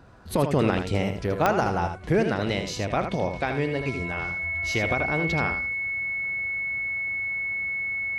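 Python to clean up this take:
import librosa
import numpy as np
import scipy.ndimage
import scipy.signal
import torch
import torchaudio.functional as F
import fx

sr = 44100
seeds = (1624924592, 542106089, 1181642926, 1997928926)

y = fx.fix_declick_ar(x, sr, threshold=10.0)
y = fx.notch(y, sr, hz=2200.0, q=30.0)
y = fx.fix_echo_inverse(y, sr, delay_ms=79, level_db=-7.5)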